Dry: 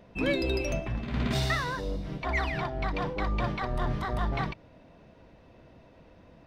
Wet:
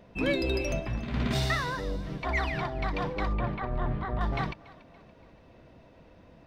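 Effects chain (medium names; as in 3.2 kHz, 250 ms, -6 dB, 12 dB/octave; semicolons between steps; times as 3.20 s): 3.33–4.21 s: distance through air 400 m; on a send: thinning echo 285 ms, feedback 48%, level -19.5 dB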